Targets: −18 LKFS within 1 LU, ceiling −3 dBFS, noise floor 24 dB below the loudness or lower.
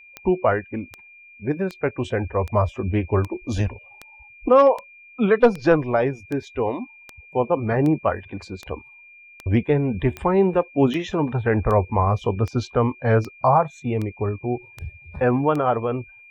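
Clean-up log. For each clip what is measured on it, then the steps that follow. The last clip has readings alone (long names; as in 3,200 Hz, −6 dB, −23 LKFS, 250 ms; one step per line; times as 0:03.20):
number of clicks 21; interfering tone 2,400 Hz; level of the tone −45 dBFS; integrated loudness −22.0 LKFS; sample peak −5.5 dBFS; target loudness −18.0 LKFS
→ click removal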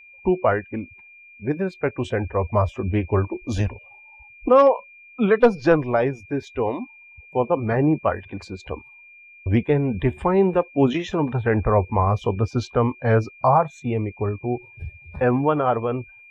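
number of clicks 0; interfering tone 2,400 Hz; level of the tone −45 dBFS
→ notch filter 2,400 Hz, Q 30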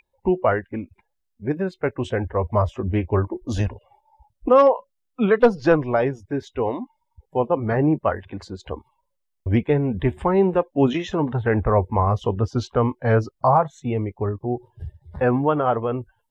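interfering tone none found; integrated loudness −22.0 LKFS; sample peak −5.5 dBFS; target loudness −18.0 LKFS
→ level +4 dB
brickwall limiter −3 dBFS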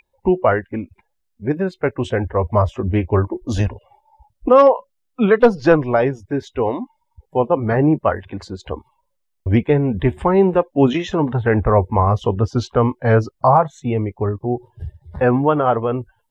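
integrated loudness −18.0 LKFS; sample peak −3.0 dBFS; background noise floor −71 dBFS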